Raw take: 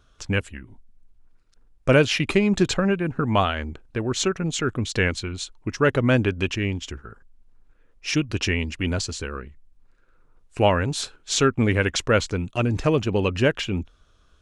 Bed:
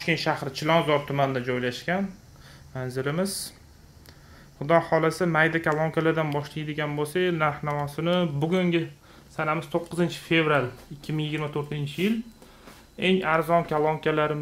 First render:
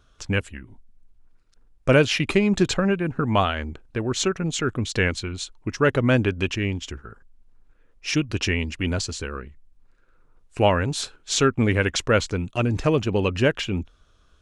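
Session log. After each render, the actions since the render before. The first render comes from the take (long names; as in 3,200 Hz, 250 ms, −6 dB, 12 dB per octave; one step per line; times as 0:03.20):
no processing that can be heard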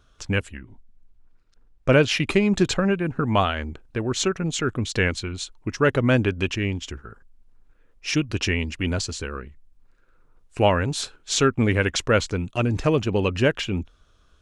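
0:00.57–0:02.08: high-frequency loss of the air 52 metres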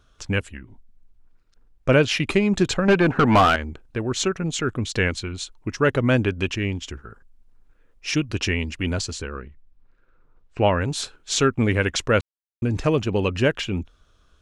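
0:02.88–0:03.56: mid-hump overdrive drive 25 dB, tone 1,800 Hz, clips at −6.5 dBFS
0:09.22–0:10.81: high-frequency loss of the air 150 metres
0:12.21–0:12.62: silence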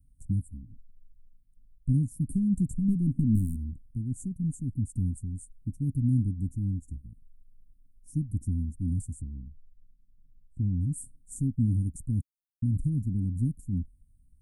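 Chebyshev band-stop filter 280–8,700 Hz, order 5
parametric band 330 Hz −8.5 dB 1.2 octaves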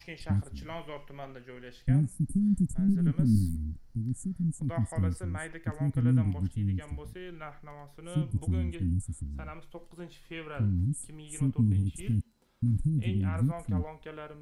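mix in bed −19.5 dB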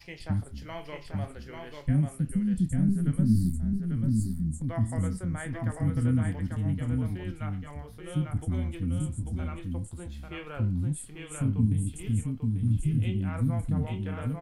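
double-tracking delay 27 ms −12 dB
single-tap delay 843 ms −4 dB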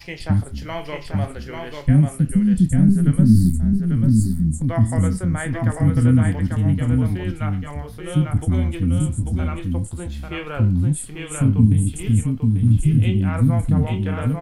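level +10.5 dB
brickwall limiter −3 dBFS, peak gain reduction 1 dB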